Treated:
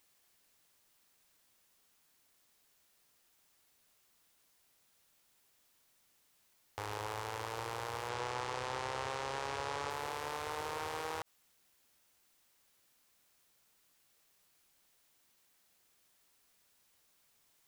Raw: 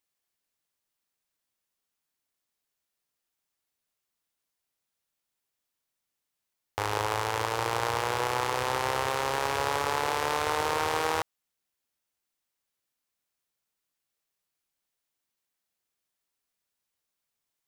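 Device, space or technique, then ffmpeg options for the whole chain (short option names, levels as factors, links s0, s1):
de-esser from a sidechain: -filter_complex "[0:a]asettb=1/sr,asplit=3[s0][s1][s2];[s0]atrim=end=8.094[s3];[s1]atrim=start=8.09:end=9.9,asetpts=PTS-STARTPTS,afade=t=in:d=0.004:c=qsin,afade=t=out:st=1.806:d=0.004:c=qsin,lowpass=8300[s4];[s2]atrim=start=9.896[s5];[s3][s4]acrossfade=d=0.004:c1=hsin:c2=qsin[s6];[s6][s5]acrossfade=d=0.004:c1=qsin:c2=hsin,asplit=2[s7][s8];[s8]highpass=4500,apad=whole_len=779511[s9];[s7][s9]sidechaincompress=threshold=0.00141:ratio=10:attack=1.3:release=34,volume=4.22"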